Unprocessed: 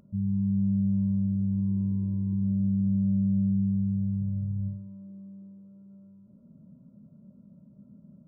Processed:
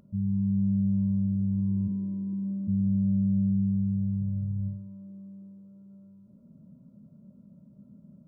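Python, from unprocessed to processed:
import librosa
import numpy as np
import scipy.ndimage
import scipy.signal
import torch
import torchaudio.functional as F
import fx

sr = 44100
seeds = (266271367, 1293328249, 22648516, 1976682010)

y = fx.highpass(x, sr, hz=fx.line((1.87, 130.0), (2.67, 230.0)), slope=24, at=(1.87, 2.67), fade=0.02)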